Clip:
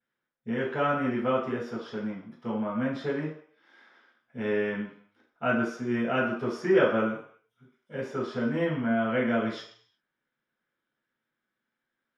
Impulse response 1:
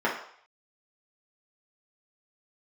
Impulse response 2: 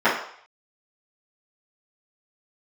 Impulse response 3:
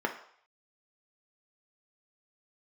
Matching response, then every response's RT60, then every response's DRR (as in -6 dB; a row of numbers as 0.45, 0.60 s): 2; 0.60, 0.60, 0.60 s; -6.0, -15.5, 2.5 dB